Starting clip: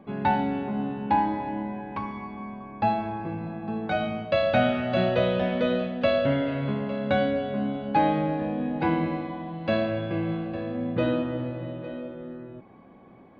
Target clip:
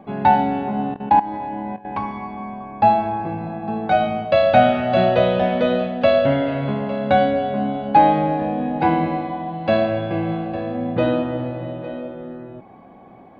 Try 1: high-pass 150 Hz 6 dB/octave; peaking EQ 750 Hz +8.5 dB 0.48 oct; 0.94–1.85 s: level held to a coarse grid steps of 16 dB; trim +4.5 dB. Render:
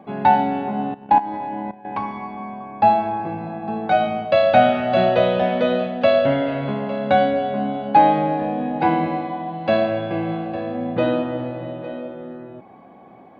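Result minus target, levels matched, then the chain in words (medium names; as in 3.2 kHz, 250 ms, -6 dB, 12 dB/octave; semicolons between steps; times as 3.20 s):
125 Hz band -3.0 dB
peaking EQ 750 Hz +8.5 dB 0.48 oct; 0.94–1.85 s: level held to a coarse grid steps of 16 dB; trim +4.5 dB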